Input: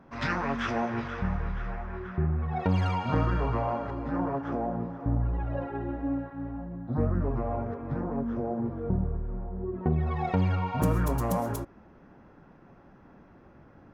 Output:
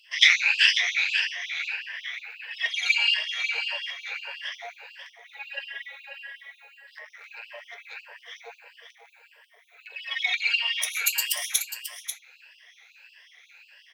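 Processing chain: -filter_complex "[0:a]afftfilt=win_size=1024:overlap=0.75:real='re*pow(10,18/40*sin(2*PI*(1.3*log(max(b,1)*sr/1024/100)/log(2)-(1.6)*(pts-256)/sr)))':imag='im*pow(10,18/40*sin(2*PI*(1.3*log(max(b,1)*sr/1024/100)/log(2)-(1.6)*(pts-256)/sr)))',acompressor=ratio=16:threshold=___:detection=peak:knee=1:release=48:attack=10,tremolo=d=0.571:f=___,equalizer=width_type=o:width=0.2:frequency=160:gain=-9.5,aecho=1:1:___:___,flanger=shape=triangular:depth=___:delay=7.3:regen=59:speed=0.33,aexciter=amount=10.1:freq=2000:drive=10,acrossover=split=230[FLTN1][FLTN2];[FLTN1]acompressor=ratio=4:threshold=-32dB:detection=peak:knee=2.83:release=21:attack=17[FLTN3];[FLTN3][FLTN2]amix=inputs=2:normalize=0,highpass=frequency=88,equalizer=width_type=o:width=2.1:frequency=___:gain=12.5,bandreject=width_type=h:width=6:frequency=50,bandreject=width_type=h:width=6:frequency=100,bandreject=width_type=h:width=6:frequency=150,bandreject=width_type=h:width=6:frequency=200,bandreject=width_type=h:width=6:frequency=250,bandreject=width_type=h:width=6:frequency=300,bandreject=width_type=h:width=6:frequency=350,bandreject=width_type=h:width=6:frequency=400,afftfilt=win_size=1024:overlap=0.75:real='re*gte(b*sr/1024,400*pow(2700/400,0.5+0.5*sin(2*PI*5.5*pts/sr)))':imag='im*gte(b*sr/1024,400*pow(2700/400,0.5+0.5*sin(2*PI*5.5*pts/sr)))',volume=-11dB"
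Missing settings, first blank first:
-23dB, 250, 540, 0.316, 2.9, 2300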